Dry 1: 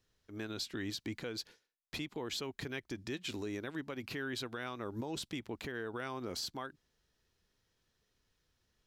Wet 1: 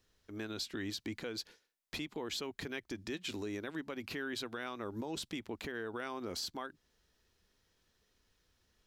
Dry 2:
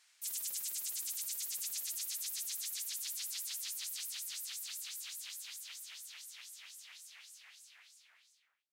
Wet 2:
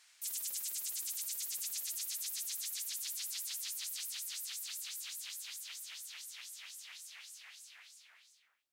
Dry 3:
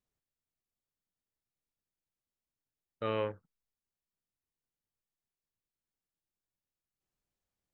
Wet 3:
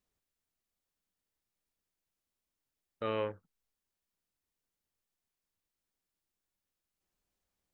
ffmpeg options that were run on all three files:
-filter_complex "[0:a]equalizer=f=130:w=7.3:g=-14.5,asplit=2[a][b];[b]acompressor=threshold=-51dB:ratio=6,volume=-1.5dB[c];[a][c]amix=inputs=2:normalize=0,volume=-1.5dB"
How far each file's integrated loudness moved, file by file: 0.0, 0.0, -1.0 LU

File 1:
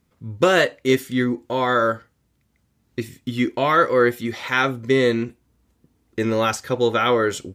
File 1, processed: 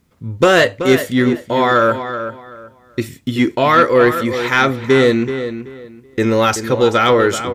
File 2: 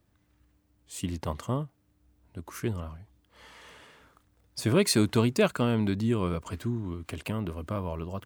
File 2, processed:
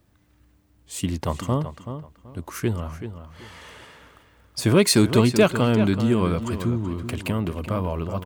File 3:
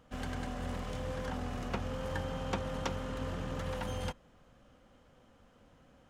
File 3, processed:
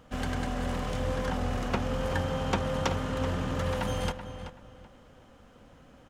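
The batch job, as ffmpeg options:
-filter_complex "[0:a]acontrast=74,asplit=2[a][b];[b]adelay=380,lowpass=f=3.8k:p=1,volume=-10dB,asplit=2[c][d];[d]adelay=380,lowpass=f=3.8k:p=1,volume=0.24,asplit=2[e][f];[f]adelay=380,lowpass=f=3.8k:p=1,volume=0.24[g];[a][c][e][g]amix=inputs=4:normalize=0"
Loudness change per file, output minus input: +5.5, +6.5, +7.0 LU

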